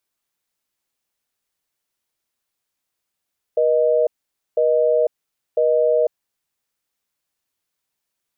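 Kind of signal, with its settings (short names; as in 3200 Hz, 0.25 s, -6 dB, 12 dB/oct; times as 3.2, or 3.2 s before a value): call progress tone busy tone, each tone -16.5 dBFS 2.50 s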